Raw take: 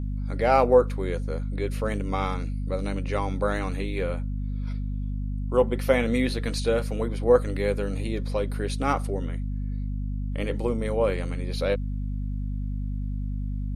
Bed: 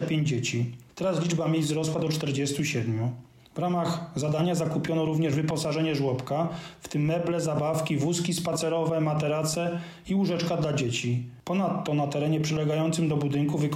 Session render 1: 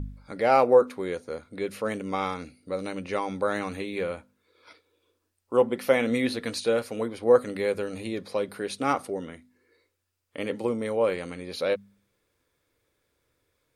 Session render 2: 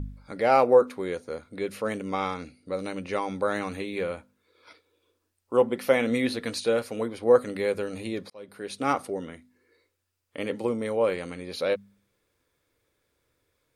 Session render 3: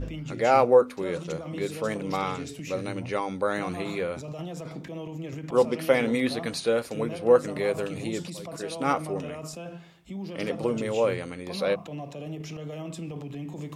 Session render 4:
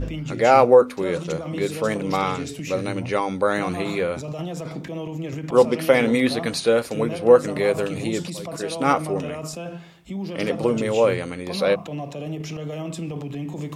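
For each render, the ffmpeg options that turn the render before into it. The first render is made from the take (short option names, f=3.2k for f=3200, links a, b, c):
-af "bandreject=f=50:t=h:w=4,bandreject=f=100:t=h:w=4,bandreject=f=150:t=h:w=4,bandreject=f=200:t=h:w=4,bandreject=f=250:t=h:w=4"
-filter_complex "[0:a]asettb=1/sr,asplit=3[a][b][c];[a]atrim=end=2.104[d];[b]atrim=start=2.1:end=2.74,asetpts=PTS-STARTPTS,afade=t=in:d=0.004:c=qsin,afade=t=out:st=0.636:d=0.004:c=qsin,lowpass=9.2k[e];[c]atrim=start=2.736[f];[d][e]acrossfade=d=0.004:c1=hsin:c2=qsin[g];[g][f]acrossfade=d=0.004:c1=qsin:c2=hsin,asplit=2[h][i];[h]atrim=end=8.3,asetpts=PTS-STARTPTS,afade=t=out:st=8.296:d=0.004:c=hsin[j];[i]atrim=start=8.3,asetpts=PTS-STARTPTS,afade=t=in:d=0.58[k];[j][k]concat=n=2:v=0:a=1"
-filter_complex "[1:a]volume=-11dB[a];[0:a][a]amix=inputs=2:normalize=0"
-af "volume=6dB,alimiter=limit=-3dB:level=0:latency=1"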